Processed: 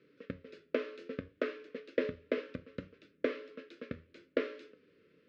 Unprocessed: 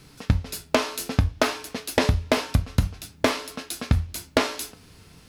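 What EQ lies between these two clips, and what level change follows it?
ladder band-pass 610 Hz, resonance 60%; Butterworth band-stop 800 Hz, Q 0.51; distance through air 130 m; +12.0 dB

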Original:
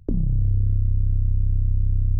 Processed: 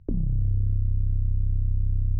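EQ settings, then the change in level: distance through air 210 m; -3.5 dB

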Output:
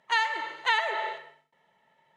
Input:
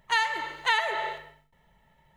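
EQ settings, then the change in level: high-pass 310 Hz 12 dB/octave; distance through air 55 m; 0.0 dB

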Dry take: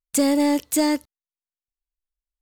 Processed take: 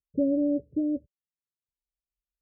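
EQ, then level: high-pass 67 Hz 12 dB/octave; rippled Chebyshev low-pass 590 Hz, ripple 6 dB; tilt EQ -3.5 dB/octave; -6.0 dB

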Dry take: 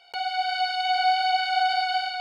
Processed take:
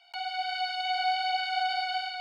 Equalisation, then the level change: rippled Chebyshev high-pass 650 Hz, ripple 3 dB; -3.5 dB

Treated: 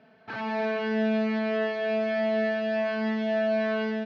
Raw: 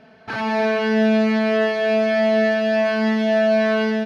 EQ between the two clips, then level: band-pass 100–4300 Hz; -8.5 dB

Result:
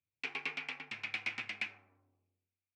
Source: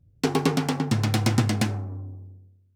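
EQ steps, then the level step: band-pass filter 2.4 kHz, Q 6.8; distance through air 53 m; +3.5 dB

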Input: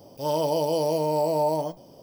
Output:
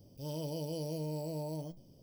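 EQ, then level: amplifier tone stack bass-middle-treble 10-0-1; +9.5 dB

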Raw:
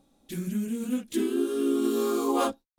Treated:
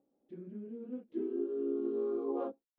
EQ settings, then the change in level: band-pass filter 430 Hz, Q 1.9; distance through air 260 m; -5.5 dB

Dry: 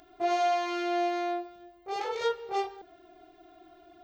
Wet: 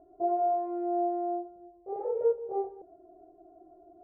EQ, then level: four-pole ladder low-pass 640 Hz, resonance 60%; +7.5 dB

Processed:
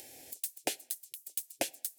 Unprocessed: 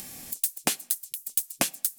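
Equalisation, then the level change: high-pass 270 Hz 6 dB/octave; treble shelf 3.1 kHz -11 dB; static phaser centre 480 Hz, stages 4; 0.0 dB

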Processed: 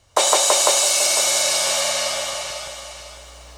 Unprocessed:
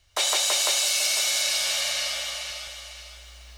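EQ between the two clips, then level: graphic EQ 125/250/500/1000/8000 Hz +11/+10/+11/+11/+9 dB; 0.0 dB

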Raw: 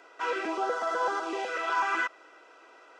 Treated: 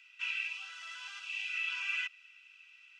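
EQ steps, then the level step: ladder high-pass 2.5 kHz, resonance 80%; +5.5 dB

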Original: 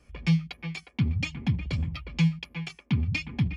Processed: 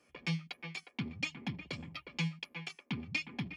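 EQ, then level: high-pass 270 Hz 12 dB/octave; -4.0 dB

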